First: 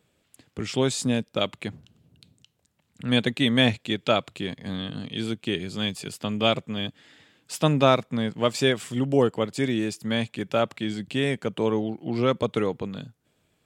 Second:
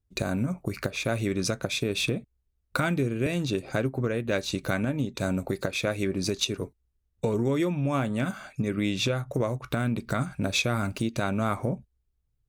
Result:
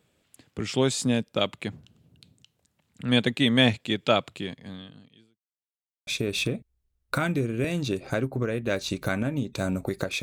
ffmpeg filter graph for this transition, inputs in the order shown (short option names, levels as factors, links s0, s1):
-filter_complex "[0:a]apad=whole_dur=10.22,atrim=end=10.22,asplit=2[s0][s1];[s0]atrim=end=5.43,asetpts=PTS-STARTPTS,afade=t=out:st=4.28:d=1.15:c=qua[s2];[s1]atrim=start=5.43:end=6.07,asetpts=PTS-STARTPTS,volume=0[s3];[1:a]atrim=start=1.69:end=5.84,asetpts=PTS-STARTPTS,afade=t=in:d=0.004:c=hsin[s4];[s2][s3][s4]concat=n=3:v=0:a=1"